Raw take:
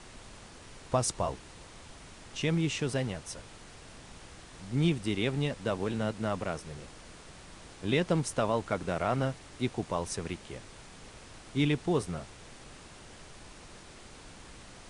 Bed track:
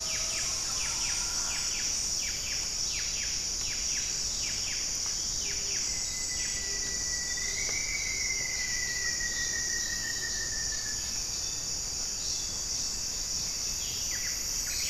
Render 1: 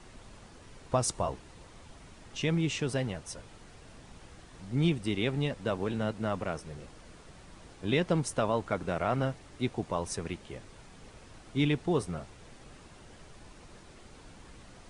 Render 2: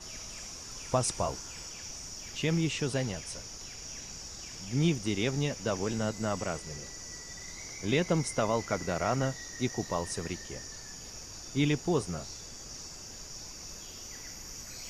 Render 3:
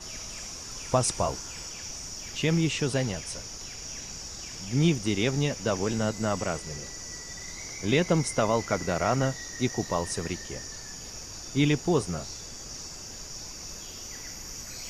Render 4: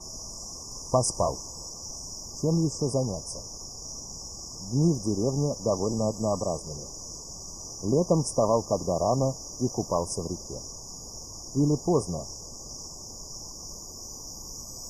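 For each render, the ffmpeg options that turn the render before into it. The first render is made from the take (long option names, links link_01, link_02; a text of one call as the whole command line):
ffmpeg -i in.wav -af "afftdn=noise_reduction=6:noise_floor=-51" out.wav
ffmpeg -i in.wav -i bed.wav -filter_complex "[1:a]volume=-12.5dB[link_01];[0:a][link_01]amix=inputs=2:normalize=0" out.wav
ffmpeg -i in.wav -af "volume=4dB" out.wav
ffmpeg -i in.wav -af "afftfilt=real='re*(1-between(b*sr/4096,1200,4800))':imag='im*(1-between(b*sr/4096,1200,4800))':win_size=4096:overlap=0.75,adynamicequalizer=threshold=0.00794:dfrequency=580:dqfactor=3:tfrequency=580:tqfactor=3:attack=5:release=100:ratio=0.375:range=2:mode=boostabove:tftype=bell" out.wav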